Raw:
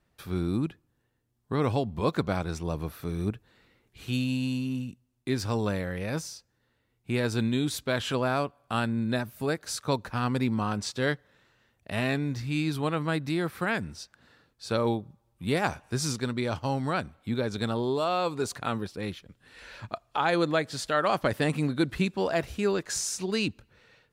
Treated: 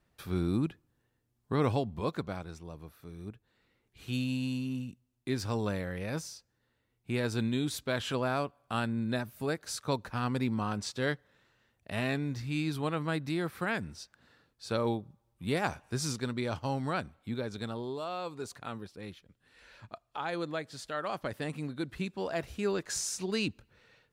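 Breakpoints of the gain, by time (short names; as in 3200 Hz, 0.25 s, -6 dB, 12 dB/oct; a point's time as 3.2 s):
1.65 s -1.5 dB
2.71 s -14 dB
3.21 s -14 dB
4.19 s -4 dB
16.98 s -4 dB
17.96 s -10 dB
21.82 s -10 dB
22.87 s -3.5 dB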